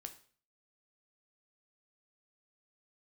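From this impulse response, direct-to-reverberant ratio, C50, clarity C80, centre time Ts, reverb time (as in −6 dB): 6.0 dB, 12.5 dB, 17.0 dB, 8 ms, 0.45 s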